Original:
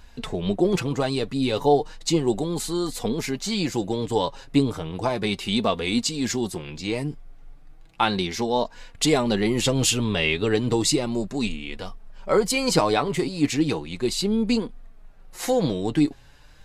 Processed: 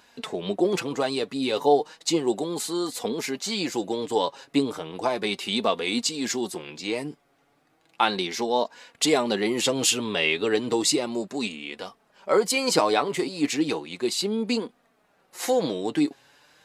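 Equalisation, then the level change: high-pass 280 Hz 12 dB/octave; 0.0 dB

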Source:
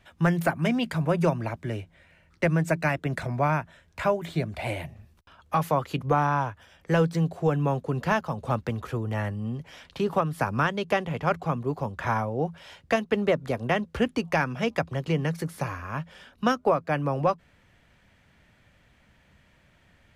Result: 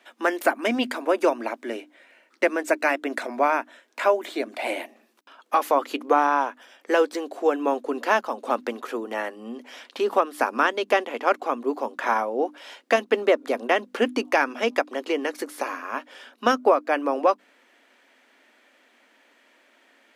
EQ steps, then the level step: brick-wall FIR high-pass 230 Hz; hum notches 50/100/150/200/250/300 Hz; +4.5 dB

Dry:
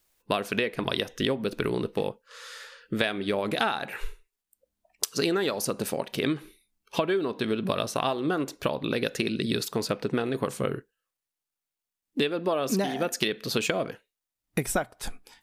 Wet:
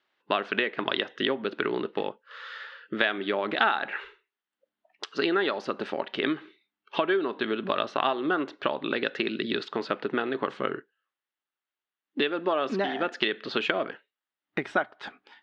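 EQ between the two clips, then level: cabinet simulation 410–3100 Hz, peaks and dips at 490 Hz -9 dB, 700 Hz -5 dB, 1 kHz -4 dB, 2.4 kHz -7 dB; +6.5 dB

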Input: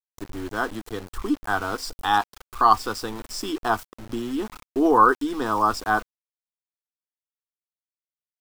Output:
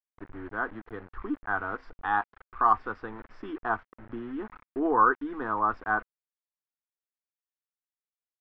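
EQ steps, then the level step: four-pole ladder low-pass 2.1 kHz, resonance 40%; 0.0 dB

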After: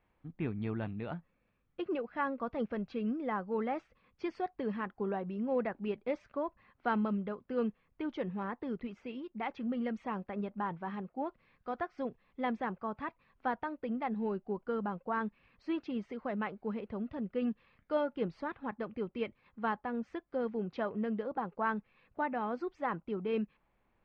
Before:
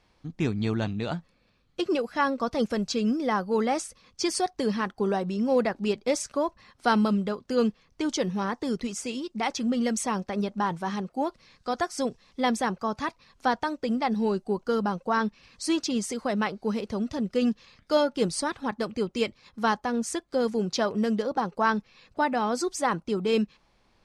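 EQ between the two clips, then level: low-pass 2.6 kHz 24 dB/octave; -9.0 dB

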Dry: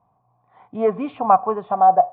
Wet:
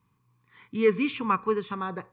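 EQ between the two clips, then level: dynamic bell 440 Hz, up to +3 dB, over -28 dBFS, Q 3.3; Butterworth band-stop 680 Hz, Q 0.95; resonant high shelf 1.6 kHz +9 dB, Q 1.5; 0.0 dB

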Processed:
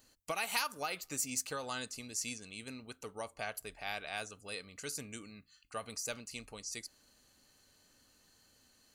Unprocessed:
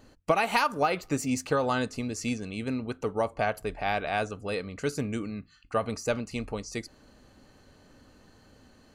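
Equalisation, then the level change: pre-emphasis filter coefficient 0.9; +2.5 dB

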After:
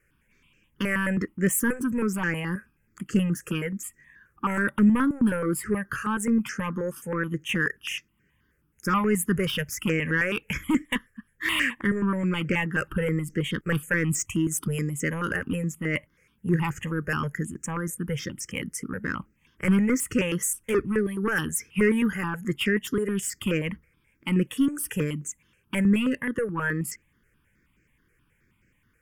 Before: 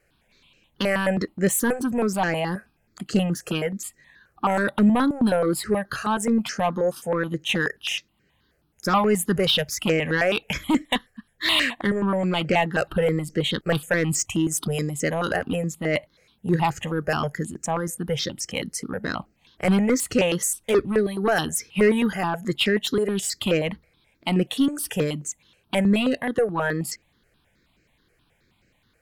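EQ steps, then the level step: static phaser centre 1.7 kHz, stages 4; 0.0 dB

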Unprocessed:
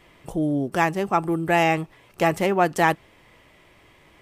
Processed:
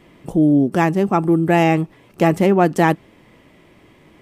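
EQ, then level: peaking EQ 230 Hz +11.5 dB 2 oct; 0.0 dB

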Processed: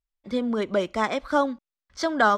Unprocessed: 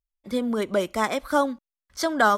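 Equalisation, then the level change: distance through air 150 m; treble shelf 5.5 kHz +9.5 dB; 0.0 dB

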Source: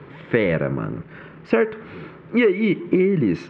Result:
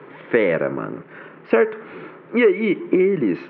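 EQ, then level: band-pass 300–3900 Hz; distance through air 220 m; +4.0 dB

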